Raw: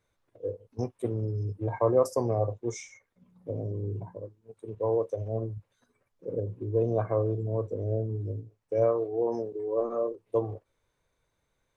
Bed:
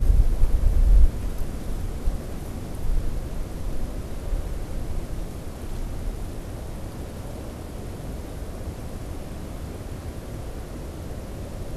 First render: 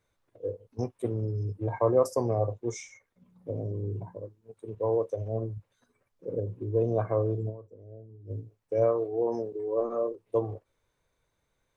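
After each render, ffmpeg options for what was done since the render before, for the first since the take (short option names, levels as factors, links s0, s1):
-filter_complex "[0:a]asplit=3[s0][s1][s2];[s0]atrim=end=7.77,asetpts=PTS-STARTPTS,afade=t=out:st=7.49:d=0.28:c=exp:silence=0.133352[s3];[s1]atrim=start=7.77:end=8.04,asetpts=PTS-STARTPTS,volume=0.133[s4];[s2]atrim=start=8.04,asetpts=PTS-STARTPTS,afade=t=in:d=0.28:c=exp:silence=0.133352[s5];[s3][s4][s5]concat=n=3:v=0:a=1"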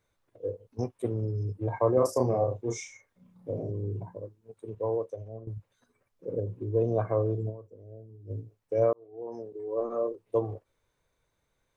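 -filter_complex "[0:a]asettb=1/sr,asplit=3[s0][s1][s2];[s0]atrim=end=1.944[s3];[s1]atrim=start=1.94:end=3.7,asetpts=PTS-STARTPTS,afade=t=in:d=0.004:c=qsin,afade=t=out:st=1.756:d=0.004:c=qsin,asplit=2[s4][s5];[s5]adelay=32,volume=0.708[s6];[s4][s6]amix=inputs=2:normalize=0,atrim=end_sample=77616[s7];[s2]atrim=start=3.696[s8];[s3][s7]acrossfade=d=0.004:c1=hsin:c2=qsin[s9];[s9][s8]acrossfade=d=0.004:c1=qsin:c2=hsin,asplit=3[s10][s11][s12];[s10]atrim=end=5.47,asetpts=PTS-STARTPTS,afade=t=out:st=4.66:d=0.81:silence=0.16788[s13];[s11]atrim=start=5.47:end=8.93,asetpts=PTS-STARTPTS,afade=t=in:d=0.004:c=hsin:silence=0.16788,afade=t=out:st=3.456:d=0.004:c=hsin[s14];[s12]atrim=start=8.93,asetpts=PTS-STARTPTS,afade=t=in:d=1.12[s15];[s13][s14][s15]concat=n=3:v=0:a=1"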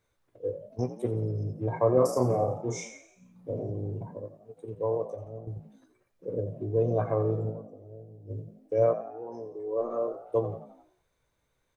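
-filter_complex "[0:a]asplit=2[s0][s1];[s1]adelay=16,volume=0.299[s2];[s0][s2]amix=inputs=2:normalize=0,asplit=6[s3][s4][s5][s6][s7][s8];[s4]adelay=87,afreqshift=52,volume=0.224[s9];[s5]adelay=174,afreqshift=104,volume=0.112[s10];[s6]adelay=261,afreqshift=156,volume=0.0562[s11];[s7]adelay=348,afreqshift=208,volume=0.0279[s12];[s8]adelay=435,afreqshift=260,volume=0.014[s13];[s3][s9][s10][s11][s12][s13]amix=inputs=6:normalize=0"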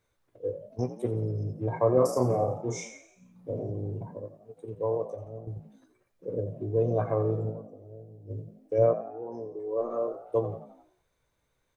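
-filter_complex "[0:a]asettb=1/sr,asplit=3[s0][s1][s2];[s0]atrim=end=8.784[s3];[s1]atrim=start=8.78:end=9.59,asetpts=PTS-STARTPTS,afade=t=in:d=0.004:c=qsin,afade=t=out:st=0.806:d=0.004:c=qsin,tiltshelf=f=750:g=3.5[s4];[s2]atrim=start=9.586[s5];[s3][s4]acrossfade=d=0.004:c1=hsin:c2=qsin[s6];[s6][s5]acrossfade=d=0.004:c1=qsin:c2=hsin"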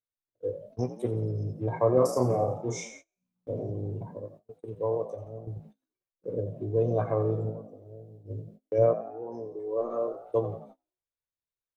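-af "agate=range=0.0398:threshold=0.00355:ratio=16:detection=peak,equalizer=f=3700:t=o:w=0.64:g=3.5"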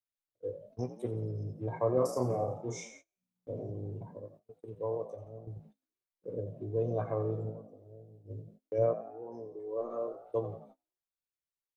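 -af "volume=0.501"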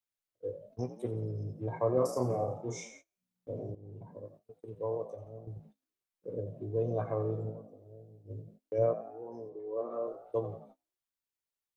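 -filter_complex "[0:a]asettb=1/sr,asplit=3[s0][s1][s2];[s0]atrim=end=9.494[s3];[s1]atrim=start=9.49:end=10.07,asetpts=PTS-STARTPTS,afade=t=in:d=0.004:c=qsin,afade=t=out:st=0.576:d=0.004:c=qsin,highpass=100,lowpass=3700[s4];[s2]atrim=start=10.066[s5];[s3][s4]acrossfade=d=0.004:c1=hsin:c2=qsin[s6];[s6][s5]acrossfade=d=0.004:c1=qsin:c2=hsin,asplit=2[s7][s8];[s7]atrim=end=3.75,asetpts=PTS-STARTPTS,afade=t=out:st=3.746:d=0.004:c=hsin:silence=0.158489[s9];[s8]atrim=start=3.75,asetpts=PTS-STARTPTS,afade=t=in:d=0.5:silence=0.158489[s10];[s9][s10]concat=n=2:v=0:a=1"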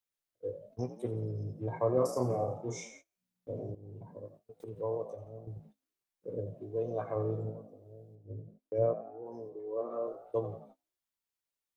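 -filter_complex "[0:a]asettb=1/sr,asplit=3[s0][s1][s2];[s0]atrim=end=4.604[s3];[s1]atrim=start=4.6:end=5.13,asetpts=PTS-STARTPTS,afade=t=in:d=0.004:c=qsin,afade=t=out:st=0.526:d=0.004:c=qsin,acompressor=mode=upward:threshold=0.0141:ratio=2.5:attack=3.2:release=140:knee=2.83:detection=peak[s4];[s2]atrim=start=5.126[s5];[s3][s4]acrossfade=d=0.004:c1=hsin:c2=qsin[s6];[s6][s5]acrossfade=d=0.004:c1=qsin:c2=hsin,asettb=1/sr,asplit=3[s7][s8][s9];[s7]atrim=end=6.544[s10];[s8]atrim=start=6.54:end=7.16,asetpts=PTS-STARTPTS,afade=t=in:d=0.004:c=qsin,afade=t=out:st=0.616:d=0.004:c=qsin,lowshelf=f=200:g=-11[s11];[s9]atrim=start=7.156[s12];[s10][s11]acrossfade=d=0.004:c1=hsin:c2=qsin[s13];[s13][s12]acrossfade=d=0.004:c1=qsin:c2=hsin,asettb=1/sr,asplit=3[s14][s15][s16];[s14]atrim=end=8.154[s17];[s15]atrim=start=8.15:end=9.26,asetpts=PTS-STARTPTS,afade=t=in:d=0.004:c=qsin,afade=t=out:st=1.106:d=0.004:c=qsin,highshelf=f=2000:g=-11[s18];[s16]atrim=start=9.256[s19];[s17][s18]acrossfade=d=0.004:c1=hsin:c2=qsin[s20];[s20][s19]acrossfade=d=0.004:c1=qsin:c2=hsin"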